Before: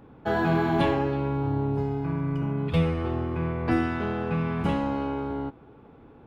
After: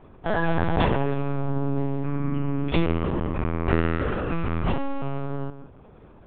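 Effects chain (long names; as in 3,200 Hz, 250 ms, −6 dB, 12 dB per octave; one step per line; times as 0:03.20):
high-shelf EQ 2,000 Hz +3 dB
on a send: feedback echo with a low-pass in the loop 158 ms, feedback 18%, low-pass 1,300 Hz, level −11.5 dB
on the sum: linear-prediction vocoder at 8 kHz pitch kept
level +1.5 dB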